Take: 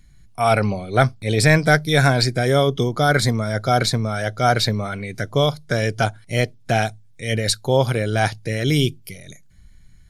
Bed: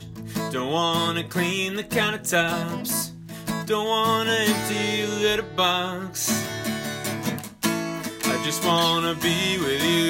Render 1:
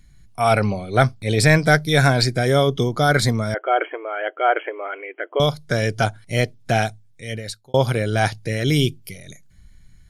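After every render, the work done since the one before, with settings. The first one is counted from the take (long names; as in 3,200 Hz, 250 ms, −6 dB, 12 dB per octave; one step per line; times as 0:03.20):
0:03.54–0:05.40: linear-phase brick-wall band-pass 300–3,300 Hz
0:06.81–0:07.74: fade out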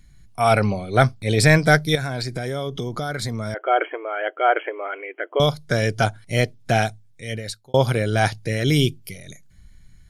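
0:01.95–0:03.62: downward compressor 8 to 1, threshold −23 dBFS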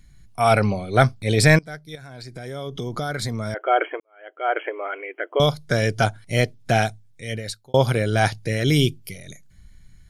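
0:01.59–0:02.96: fade in quadratic, from −21.5 dB
0:04.00–0:04.65: fade in quadratic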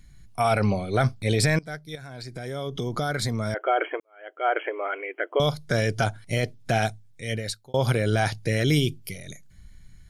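brickwall limiter −12.5 dBFS, peak gain reduction 10 dB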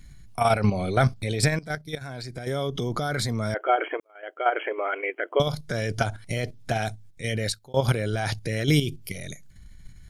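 in parallel at +1 dB: brickwall limiter −22 dBFS, peak gain reduction 9.5 dB
on the sum: output level in coarse steps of 9 dB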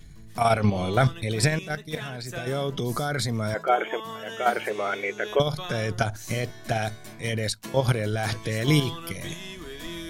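mix in bed −16 dB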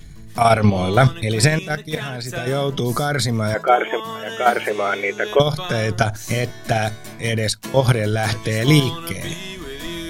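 level +7 dB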